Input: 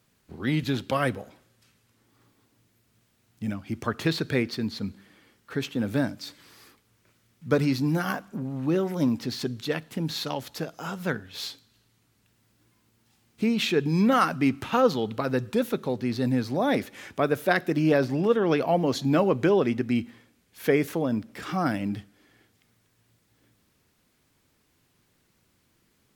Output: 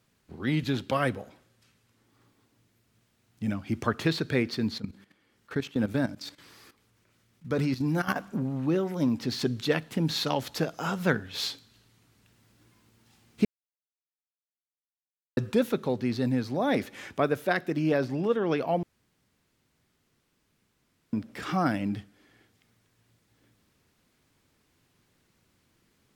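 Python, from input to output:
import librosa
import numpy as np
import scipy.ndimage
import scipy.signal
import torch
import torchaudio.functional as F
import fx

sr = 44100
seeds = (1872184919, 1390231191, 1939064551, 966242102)

y = fx.level_steps(x, sr, step_db=14, at=(4.78, 8.16))
y = fx.edit(y, sr, fx.silence(start_s=13.45, length_s=1.92),
    fx.room_tone_fill(start_s=18.83, length_s=2.3), tone=tone)
y = fx.high_shelf(y, sr, hz=10000.0, db=-5.5)
y = fx.rider(y, sr, range_db=4, speed_s=0.5)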